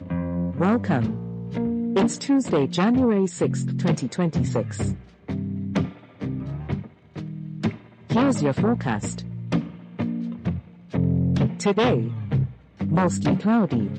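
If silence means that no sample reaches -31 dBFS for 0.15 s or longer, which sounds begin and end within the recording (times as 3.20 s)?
5.29–5.90 s
6.21–6.86 s
7.16–7.76 s
8.10–9.70 s
9.99–10.59 s
10.94–12.50 s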